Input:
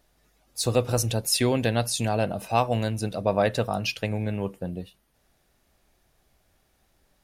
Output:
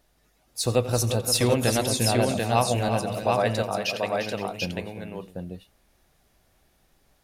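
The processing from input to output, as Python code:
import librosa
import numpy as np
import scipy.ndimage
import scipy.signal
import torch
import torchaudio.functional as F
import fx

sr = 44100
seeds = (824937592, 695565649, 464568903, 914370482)

p1 = fx.highpass(x, sr, hz=440.0, slope=6, at=(2.88, 4.49))
y = p1 + fx.echo_multitap(p1, sr, ms=(87, 351, 412, 519, 740), db=(-16.0, -9.0, -17.0, -18.5, -3.0), dry=0)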